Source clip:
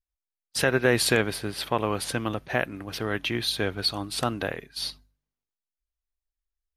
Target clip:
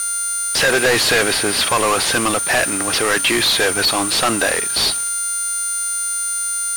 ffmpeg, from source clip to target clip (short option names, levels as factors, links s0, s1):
-filter_complex "[0:a]aeval=exprs='val(0)+0.0158*sin(2*PI*9100*n/s)':c=same,asplit=2[s0][s1];[s1]highpass=f=720:p=1,volume=70.8,asoftclip=type=tanh:threshold=0.422[s2];[s0][s2]amix=inputs=2:normalize=0,lowpass=f=8000:p=1,volume=0.501,adynamicsmooth=sensitivity=6.5:basefreq=750"